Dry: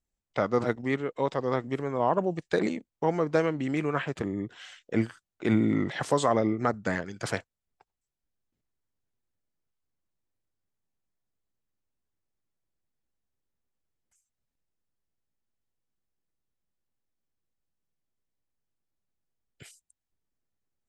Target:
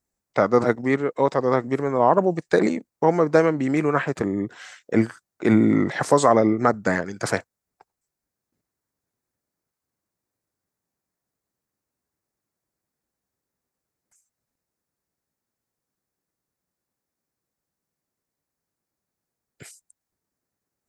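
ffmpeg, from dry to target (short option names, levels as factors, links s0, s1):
-af "highpass=f=150:p=1,equalizer=f=3100:t=o:w=0.68:g=-10,volume=2.66"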